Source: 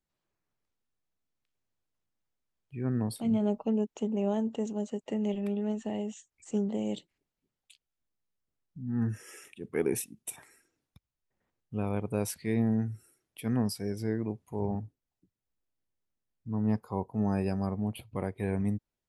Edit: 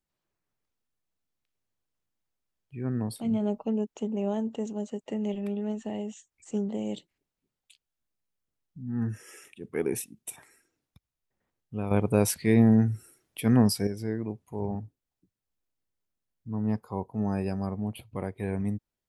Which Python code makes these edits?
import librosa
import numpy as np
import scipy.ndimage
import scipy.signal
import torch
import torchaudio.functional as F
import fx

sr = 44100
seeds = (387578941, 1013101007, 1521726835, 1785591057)

y = fx.edit(x, sr, fx.clip_gain(start_s=11.91, length_s=1.96, db=8.0), tone=tone)